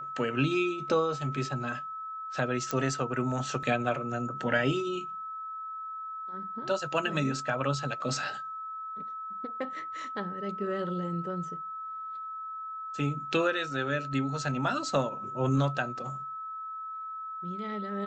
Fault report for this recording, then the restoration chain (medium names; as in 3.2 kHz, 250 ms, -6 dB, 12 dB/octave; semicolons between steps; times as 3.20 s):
whine 1.3 kHz -36 dBFS
2.71 s: pop -16 dBFS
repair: de-click; band-stop 1.3 kHz, Q 30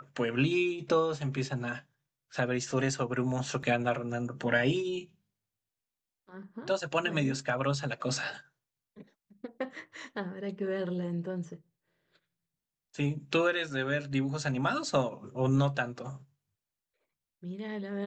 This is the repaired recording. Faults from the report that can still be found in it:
nothing left